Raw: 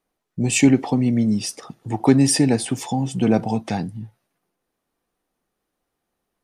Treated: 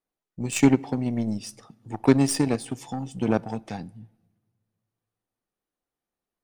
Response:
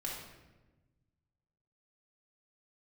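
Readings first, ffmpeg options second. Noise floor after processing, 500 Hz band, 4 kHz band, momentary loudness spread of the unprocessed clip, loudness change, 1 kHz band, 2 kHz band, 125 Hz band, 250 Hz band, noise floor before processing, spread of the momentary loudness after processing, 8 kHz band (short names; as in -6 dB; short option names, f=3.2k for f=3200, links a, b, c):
under -85 dBFS, -3.5 dB, -8.5 dB, 15 LU, -5.0 dB, -5.5 dB, -5.5 dB, -6.5 dB, -5.5 dB, -79 dBFS, 17 LU, -8.5 dB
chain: -filter_complex "[0:a]asoftclip=type=tanh:threshold=-5.5dB,aeval=exprs='0.473*(cos(1*acos(clip(val(0)/0.473,-1,1)))-cos(1*PI/2))+0.119*(cos(3*acos(clip(val(0)/0.473,-1,1)))-cos(3*PI/2))+0.0106*(cos(4*acos(clip(val(0)/0.473,-1,1)))-cos(4*PI/2))':c=same,asplit=2[a][b];[1:a]atrim=start_sample=2205[c];[b][c]afir=irnorm=-1:irlink=0,volume=-24dB[d];[a][d]amix=inputs=2:normalize=0"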